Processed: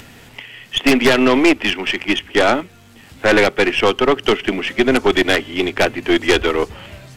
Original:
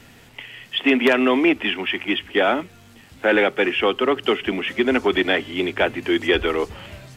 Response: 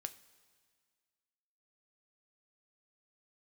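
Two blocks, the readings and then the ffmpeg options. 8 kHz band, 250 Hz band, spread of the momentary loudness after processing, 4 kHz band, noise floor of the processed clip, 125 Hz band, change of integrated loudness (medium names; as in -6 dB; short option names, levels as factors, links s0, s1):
no reading, +4.0 dB, 9 LU, +4.5 dB, -44 dBFS, +7.5 dB, +4.0 dB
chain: -af "aeval=exprs='0.562*(cos(1*acos(clip(val(0)/0.562,-1,1)))-cos(1*PI/2))+0.2*(cos(2*acos(clip(val(0)/0.562,-1,1)))-cos(2*PI/2))+0.251*(cos(5*acos(clip(val(0)/0.562,-1,1)))-cos(5*PI/2))+0.0282*(cos(6*acos(clip(val(0)/0.562,-1,1)))-cos(6*PI/2))+0.158*(cos(7*acos(clip(val(0)/0.562,-1,1)))-cos(7*PI/2))':c=same,acompressor=mode=upward:threshold=0.0178:ratio=2.5"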